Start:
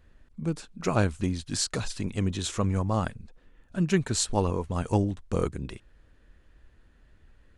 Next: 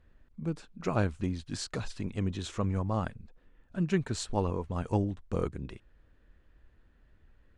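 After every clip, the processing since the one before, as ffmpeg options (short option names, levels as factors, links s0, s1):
-af "aemphasis=mode=reproduction:type=50kf,volume=0.631"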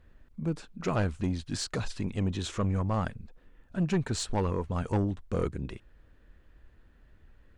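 -af "asoftclip=type=tanh:threshold=0.0596,volume=1.58"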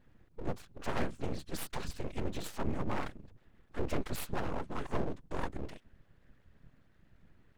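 -af "afftfilt=real='hypot(re,im)*cos(2*PI*random(0))':imag='hypot(re,im)*sin(2*PI*random(1))':win_size=512:overlap=0.75,aeval=exprs='abs(val(0))':c=same,volume=1.33"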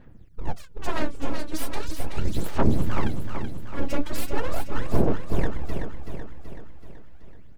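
-af "aphaser=in_gain=1:out_gain=1:delay=3.6:decay=0.75:speed=0.39:type=sinusoidal,aecho=1:1:379|758|1137|1516|1895|2274|2653:0.447|0.246|0.135|0.0743|0.0409|0.0225|0.0124,volume=1.41"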